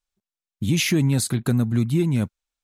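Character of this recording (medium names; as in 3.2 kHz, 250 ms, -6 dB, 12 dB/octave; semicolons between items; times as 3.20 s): noise floor -93 dBFS; spectral tilt -5.5 dB/octave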